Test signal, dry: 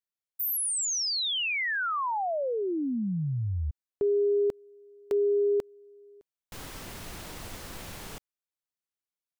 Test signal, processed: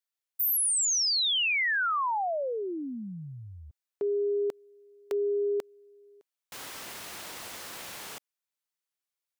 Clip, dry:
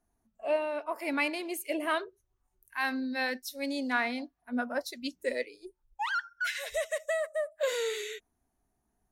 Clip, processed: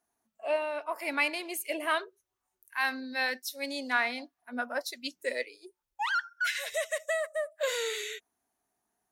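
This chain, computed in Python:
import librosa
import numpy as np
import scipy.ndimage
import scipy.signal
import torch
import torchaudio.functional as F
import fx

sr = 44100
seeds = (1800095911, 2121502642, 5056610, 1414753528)

y = fx.highpass(x, sr, hz=730.0, slope=6)
y = F.gain(torch.from_numpy(y), 3.0).numpy()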